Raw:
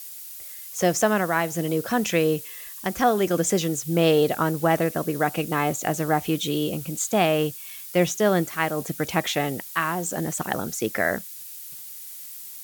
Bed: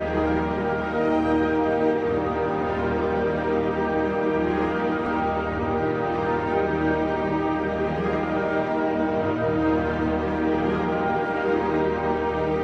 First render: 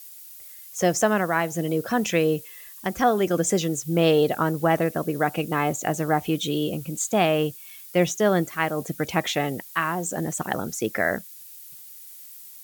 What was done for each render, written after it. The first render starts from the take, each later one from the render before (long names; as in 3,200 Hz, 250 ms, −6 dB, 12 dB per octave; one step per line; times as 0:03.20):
broadband denoise 6 dB, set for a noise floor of −39 dBFS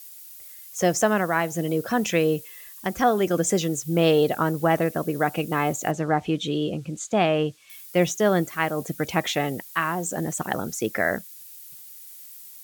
0:05.91–0:07.70: high-frequency loss of the air 82 metres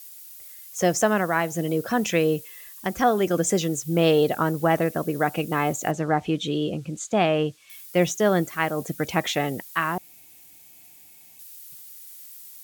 0:09.98–0:11.39: fill with room tone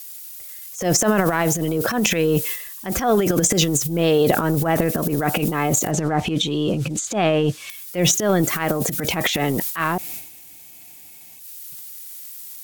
in parallel at +1 dB: downward compressor, threshold −28 dBFS, peak gain reduction 13 dB
on the sum: transient designer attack −10 dB, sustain +12 dB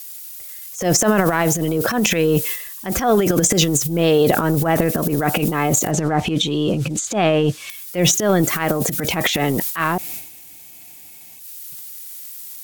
level +2 dB
brickwall limiter −3 dBFS, peak gain reduction 1.5 dB